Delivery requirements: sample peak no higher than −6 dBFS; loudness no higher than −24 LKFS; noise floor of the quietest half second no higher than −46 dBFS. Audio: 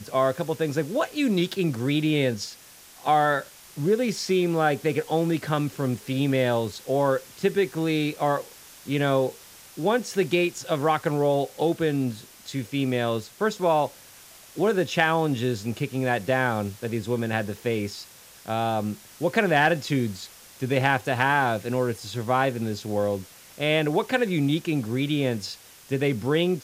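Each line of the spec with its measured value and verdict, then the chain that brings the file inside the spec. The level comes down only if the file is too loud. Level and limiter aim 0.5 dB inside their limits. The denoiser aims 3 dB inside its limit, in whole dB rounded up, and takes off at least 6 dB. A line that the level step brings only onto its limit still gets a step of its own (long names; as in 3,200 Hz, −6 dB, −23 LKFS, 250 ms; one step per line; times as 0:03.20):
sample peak −5.5 dBFS: out of spec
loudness −25.0 LKFS: in spec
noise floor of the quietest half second −49 dBFS: in spec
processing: brickwall limiter −6.5 dBFS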